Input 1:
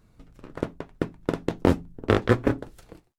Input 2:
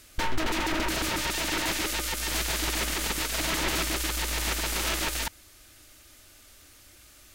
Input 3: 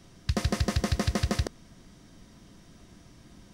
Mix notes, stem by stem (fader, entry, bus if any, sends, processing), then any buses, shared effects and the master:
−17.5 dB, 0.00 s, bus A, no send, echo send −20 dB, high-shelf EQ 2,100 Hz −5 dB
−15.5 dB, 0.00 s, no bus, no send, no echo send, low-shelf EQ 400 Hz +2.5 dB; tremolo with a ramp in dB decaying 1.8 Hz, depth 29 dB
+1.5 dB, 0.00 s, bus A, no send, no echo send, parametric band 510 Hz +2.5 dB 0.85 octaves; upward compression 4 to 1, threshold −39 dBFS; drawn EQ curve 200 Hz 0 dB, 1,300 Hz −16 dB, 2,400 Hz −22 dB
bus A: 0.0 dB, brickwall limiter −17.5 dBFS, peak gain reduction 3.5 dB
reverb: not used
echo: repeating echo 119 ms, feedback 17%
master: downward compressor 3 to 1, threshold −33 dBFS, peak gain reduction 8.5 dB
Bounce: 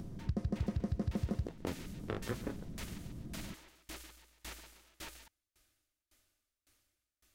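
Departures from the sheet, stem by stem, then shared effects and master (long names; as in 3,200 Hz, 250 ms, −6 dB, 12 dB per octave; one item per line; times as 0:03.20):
stem 1: missing high-shelf EQ 2,100 Hz −5 dB
stem 2: missing low-shelf EQ 400 Hz +2.5 dB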